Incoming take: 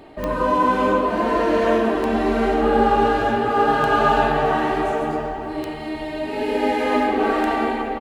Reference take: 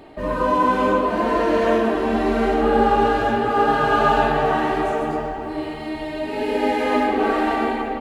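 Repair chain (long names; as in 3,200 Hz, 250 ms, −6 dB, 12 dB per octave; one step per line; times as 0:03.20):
click removal
echo removal 970 ms −24 dB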